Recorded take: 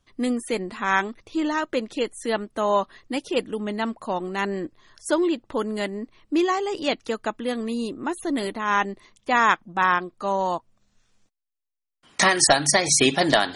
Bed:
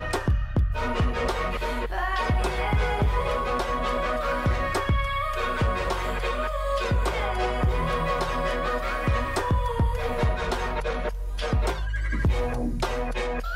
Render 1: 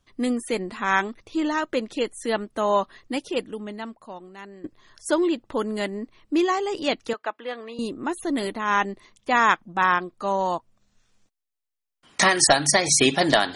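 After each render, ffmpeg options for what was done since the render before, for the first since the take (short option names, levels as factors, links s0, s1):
-filter_complex "[0:a]asettb=1/sr,asplit=3[s0][s1][s2];[s0]atrim=end=7.134[s3];[s1]atrim=start=7.13:end=7.79,asetpts=PTS-STARTPTS,afade=t=in:d=0.004:c=qsin,afade=t=out:st=0.656:d=0.004:c=qsin,highpass=570,lowpass=3000[s4];[s2]atrim=start=7.786[s5];[s3][s4]acrossfade=d=0.004:c1=hsin:c2=qsin[s6];[s6][s5]acrossfade=d=0.004:c1=qsin:c2=hsin,asplit=2[s7][s8];[s7]atrim=end=4.64,asetpts=PTS-STARTPTS,afade=t=out:st=3.13:d=1.51:c=qua:silence=0.149624[s9];[s8]atrim=start=4.64,asetpts=PTS-STARTPTS,afade=t=in:d=0.004:c=hsin:silence=0.149624[s10];[s9][s10]concat=n=2:v=0:a=1"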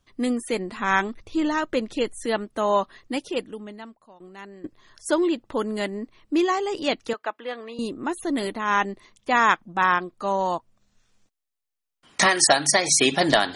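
-filter_complex "[0:a]asettb=1/sr,asplit=3[s0][s1][s2];[s0]atrim=end=0.764[s3];[s1]atrim=start=0.76:end=2.26,asetpts=PTS-STARTPTS,afade=t=in:d=0.004:c=qsin,afade=t=out:st=1.496:d=0.004:c=qsin,lowshelf=f=110:g=10[s4];[s2]atrim=start=2.256[s5];[s3][s4]acrossfade=d=0.004:c1=hsin:c2=qsin[s6];[s6][s5]acrossfade=d=0.004:c1=qsin:c2=hsin,asettb=1/sr,asplit=3[s7][s8][s9];[s7]atrim=end=12.264[s10];[s8]atrim=start=12.26:end=13.12,asetpts=PTS-STARTPTS,afade=t=in:d=0.004:c=qsin,afade=t=out:st=0.856:d=0.004:c=qsin,highpass=f=230:p=1[s11];[s9]atrim=start=13.116[s12];[s10][s11]acrossfade=d=0.004:c1=hsin:c2=qsin[s13];[s13][s12]acrossfade=d=0.004:c1=qsin:c2=hsin,asplit=2[s14][s15];[s14]atrim=end=4.2,asetpts=PTS-STARTPTS,afade=t=out:st=3.24:d=0.96:silence=0.199526[s16];[s15]atrim=start=4.2,asetpts=PTS-STARTPTS,afade=t=in:d=0.004:c=hsin:silence=0.199526[s17];[s16][s17]concat=n=2:v=0:a=1"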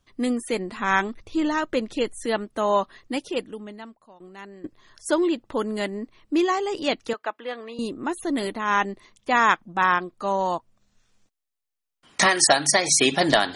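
-af anull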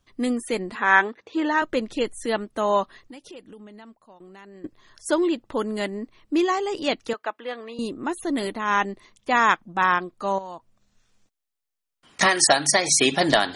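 -filter_complex "[0:a]asettb=1/sr,asplit=3[s0][s1][s2];[s0]atrim=end=0.754[s3];[s1]atrim=start=0.75:end=1.62,asetpts=PTS-STARTPTS,afade=t=in:d=0.004:c=qsin,afade=t=out:st=0.866:d=0.004:c=qsin,highpass=270,equalizer=f=470:t=q:w=4:g=7,equalizer=f=880:t=q:w=4:g=5,equalizer=f=1700:t=q:w=4:g=8,equalizer=f=5300:t=q:w=4:g=-8,lowpass=f=6600:w=0.5412,lowpass=f=6600:w=1.3066[s4];[s2]atrim=start=1.616[s5];[s3][s4]acrossfade=d=0.004:c1=hsin:c2=qsin[s6];[s6][s5]acrossfade=d=0.004:c1=qsin:c2=hsin,asettb=1/sr,asplit=3[s7][s8][s9];[s7]atrim=end=2.974[s10];[s8]atrim=start=2.97:end=4.55,asetpts=PTS-STARTPTS,afade=t=in:d=0.004:c=qsin,afade=t=out:st=1.576:d=0.004:c=qsin,acompressor=threshold=0.00891:ratio=4:attack=3.2:release=140:knee=1:detection=peak[s11];[s9]atrim=start=4.546[s12];[s10][s11]acrossfade=d=0.004:c1=hsin:c2=qsin[s13];[s13][s12]acrossfade=d=0.004:c1=qsin:c2=hsin,asettb=1/sr,asplit=3[s14][s15][s16];[s14]atrim=end=10.384[s17];[s15]atrim=start=10.38:end=12.21,asetpts=PTS-STARTPTS,afade=t=in:d=0.004:c=qsin,afade=t=out:st=1.826:d=0.004:c=qsin,acompressor=threshold=0.0251:ratio=12:attack=3.2:release=140:knee=1:detection=peak[s18];[s16]atrim=start=12.206[s19];[s17][s18]acrossfade=d=0.004:c1=hsin:c2=qsin[s20];[s20][s19]acrossfade=d=0.004:c1=qsin:c2=hsin"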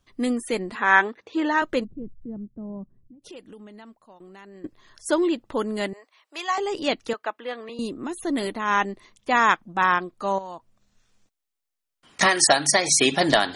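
-filter_complex "[0:a]asplit=3[s0][s1][s2];[s0]afade=t=out:st=1.83:d=0.02[s3];[s1]lowpass=f=160:t=q:w=1.5,afade=t=in:st=1.83:d=0.02,afade=t=out:st=3.22:d=0.02[s4];[s2]afade=t=in:st=3.22:d=0.02[s5];[s3][s4][s5]amix=inputs=3:normalize=0,asettb=1/sr,asplit=3[s6][s7][s8];[s6]atrim=end=5.934[s9];[s7]atrim=start=5.93:end=6.58,asetpts=PTS-STARTPTS,afade=t=in:d=0.004:c=qsin,afade=t=out:st=0.646:d=0.004:c=qsin,highpass=f=650:w=0.5412,highpass=f=650:w=1.3066[s10];[s8]atrim=start=6.576[s11];[s9][s10]acrossfade=d=0.004:c1=hsin:c2=qsin[s12];[s12][s11]acrossfade=d=0.004:c1=qsin:c2=hsin,asettb=1/sr,asplit=3[s13][s14][s15];[s13]atrim=end=7.694[s16];[s14]atrim=start=7.69:end=8.2,asetpts=PTS-STARTPTS,afade=t=in:d=0.004:c=qsin,afade=t=out:st=0.506:d=0.004:c=qsin,acrossover=split=330|3000[s17][s18][s19];[s18]acompressor=threshold=0.0251:ratio=6:attack=3.2:release=140:knee=2.83:detection=peak[s20];[s17][s20][s19]amix=inputs=3:normalize=0[s21];[s15]atrim=start=8.196[s22];[s16][s21]acrossfade=d=0.004:c1=hsin:c2=qsin[s23];[s23][s22]acrossfade=d=0.004:c1=qsin:c2=hsin"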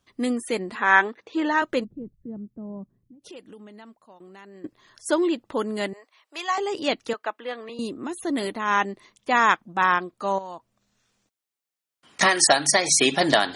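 -af "highpass=f=110:p=1"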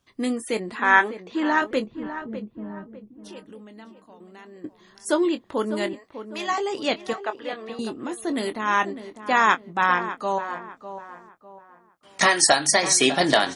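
-filter_complex "[0:a]asplit=2[s0][s1];[s1]adelay=23,volume=0.282[s2];[s0][s2]amix=inputs=2:normalize=0,asplit=2[s3][s4];[s4]adelay=601,lowpass=f=1800:p=1,volume=0.282,asplit=2[s5][s6];[s6]adelay=601,lowpass=f=1800:p=1,volume=0.37,asplit=2[s7][s8];[s8]adelay=601,lowpass=f=1800:p=1,volume=0.37,asplit=2[s9][s10];[s10]adelay=601,lowpass=f=1800:p=1,volume=0.37[s11];[s3][s5][s7][s9][s11]amix=inputs=5:normalize=0"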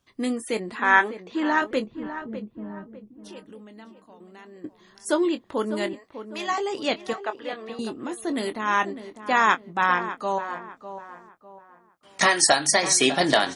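-af "volume=0.891"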